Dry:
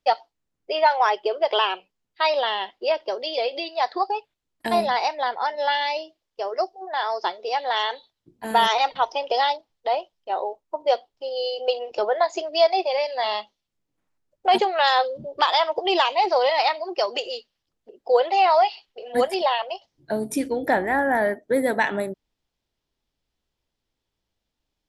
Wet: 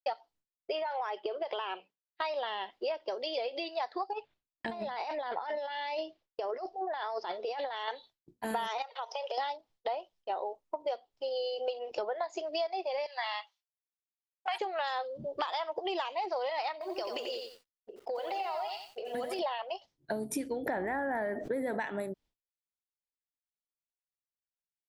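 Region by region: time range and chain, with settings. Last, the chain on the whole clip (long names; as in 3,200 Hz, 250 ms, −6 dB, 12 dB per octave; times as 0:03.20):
0:00.82–0:02.22: high-pass filter 170 Hz + downward compressor 4 to 1, threshold −24 dBFS + high-frequency loss of the air 86 metres
0:04.13–0:07.88: compressor whose output falls as the input rises −31 dBFS + high-frequency loss of the air 130 metres
0:08.82–0:09.38: downward compressor 12 to 1, threshold −28 dBFS + linear-phase brick-wall high-pass 400 Hz
0:13.06–0:14.61: high-pass filter 840 Hz 24 dB per octave + dynamic equaliser 2,000 Hz, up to +6 dB, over −43 dBFS, Q 1.7
0:16.72–0:19.39: downward compressor, threshold −29 dBFS + feedback echo at a low word length 89 ms, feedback 35%, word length 9 bits, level −5.5 dB
0:20.66–0:21.80: high-shelf EQ 5,100 Hz −8.5 dB + envelope flattener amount 70%
whole clip: downward expander −49 dBFS; dynamic equaliser 4,100 Hz, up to −4 dB, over −38 dBFS, Q 1.1; downward compressor 6 to 1, threshold −29 dBFS; level −2.5 dB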